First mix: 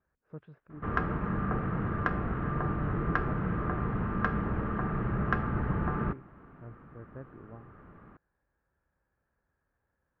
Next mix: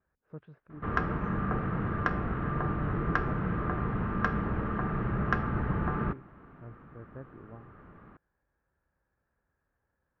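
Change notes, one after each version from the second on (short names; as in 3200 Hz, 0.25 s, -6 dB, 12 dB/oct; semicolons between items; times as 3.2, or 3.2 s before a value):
background: remove air absorption 140 m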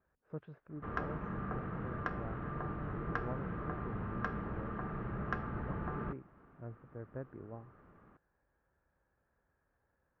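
background -10.0 dB; master: add bell 600 Hz +3 dB 1.7 oct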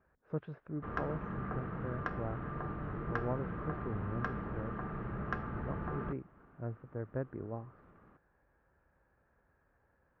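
speech +6.5 dB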